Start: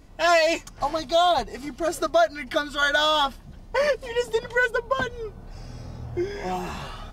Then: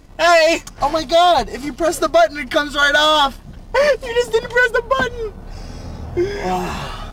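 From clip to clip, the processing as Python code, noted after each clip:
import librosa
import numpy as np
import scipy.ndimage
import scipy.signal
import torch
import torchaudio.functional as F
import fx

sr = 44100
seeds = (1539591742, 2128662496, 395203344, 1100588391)

y = fx.leveller(x, sr, passes=1)
y = fx.hum_notches(y, sr, base_hz=60, count=2)
y = F.gain(torch.from_numpy(y), 5.0).numpy()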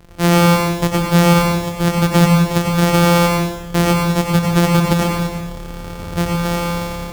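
y = np.r_[np.sort(x[:len(x) // 256 * 256].reshape(-1, 256), axis=1).ravel(), x[len(x) // 256 * 256:]]
y = fx.rev_plate(y, sr, seeds[0], rt60_s=1.0, hf_ratio=0.95, predelay_ms=80, drr_db=0.5)
y = F.gain(torch.from_numpy(y), -1.0).numpy()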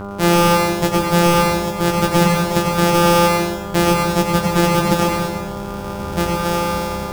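y = np.clip(x, -10.0 ** (-8.0 / 20.0), 10.0 ** (-8.0 / 20.0))
y = fx.dmg_buzz(y, sr, base_hz=100.0, harmonics=15, level_db=-29.0, tilt_db=-4, odd_only=False)
y = fx.doubler(y, sr, ms=15.0, db=-4.0)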